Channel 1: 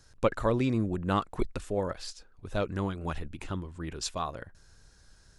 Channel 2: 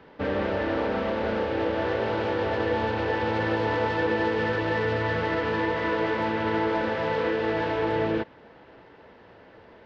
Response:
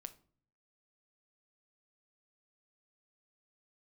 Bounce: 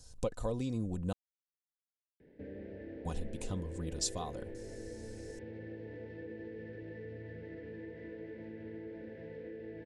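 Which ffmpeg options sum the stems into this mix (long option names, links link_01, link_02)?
-filter_complex "[0:a]aecho=1:1:4:0.51,acompressor=threshold=-38dB:ratio=2,equalizer=frequency=125:width_type=o:width=1:gain=6,equalizer=frequency=250:width_type=o:width=1:gain=-6,equalizer=frequency=2000:width_type=o:width=1:gain=-11,equalizer=frequency=8000:width_type=o:width=1:gain=6,volume=1.5dB,asplit=3[link_01][link_02][link_03];[link_01]atrim=end=1.13,asetpts=PTS-STARTPTS,afade=type=out:start_time=1.126:duration=0.004:curve=hsin[link_04];[link_02]atrim=start=1.13:end=3.05,asetpts=PTS-STARTPTS,volume=0[link_05];[link_03]atrim=start=3.05,asetpts=PTS-STARTPTS,afade=type=in:duration=0.004:curve=hsin[link_06];[link_04][link_05][link_06]concat=n=3:v=0:a=1[link_07];[1:a]firequalizer=gain_entry='entry(410,0);entry(1100,-29);entry(1700,-4);entry(3000,-16)':delay=0.05:min_phase=1,acompressor=threshold=-43dB:ratio=2,adelay=2200,volume=-7.5dB[link_08];[link_07][link_08]amix=inputs=2:normalize=0,equalizer=frequency=1300:width_type=o:width=0.8:gain=-8"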